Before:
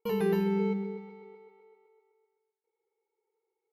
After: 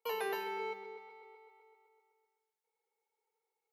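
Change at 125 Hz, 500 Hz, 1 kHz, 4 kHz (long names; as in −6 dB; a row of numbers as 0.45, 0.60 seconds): below −35 dB, −9.5 dB, +1.0 dB, can't be measured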